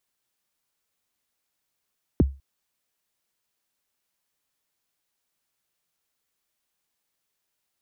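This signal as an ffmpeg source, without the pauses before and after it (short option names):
-f lavfi -i "aevalsrc='0.282*pow(10,-3*t/0.29)*sin(2*PI*(420*0.023/log(68/420)*(exp(log(68/420)*min(t,0.023)/0.023)-1)+68*max(t-0.023,0)))':d=0.2:s=44100"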